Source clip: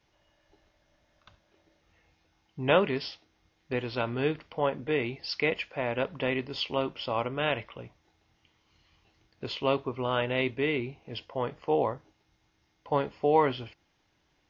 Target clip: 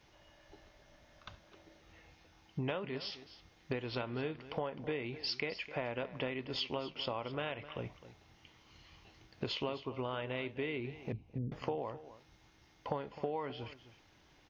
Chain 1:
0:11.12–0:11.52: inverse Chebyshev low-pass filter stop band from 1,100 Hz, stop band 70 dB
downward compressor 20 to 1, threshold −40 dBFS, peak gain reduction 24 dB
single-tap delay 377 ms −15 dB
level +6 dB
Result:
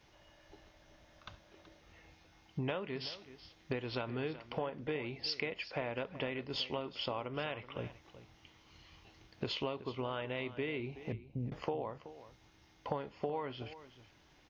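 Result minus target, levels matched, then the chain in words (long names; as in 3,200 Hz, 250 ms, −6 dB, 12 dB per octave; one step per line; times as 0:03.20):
echo 118 ms late
0:11.12–0:11.52: inverse Chebyshev low-pass filter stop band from 1,100 Hz, stop band 70 dB
downward compressor 20 to 1, threshold −40 dBFS, peak gain reduction 24 dB
single-tap delay 259 ms −15 dB
level +6 dB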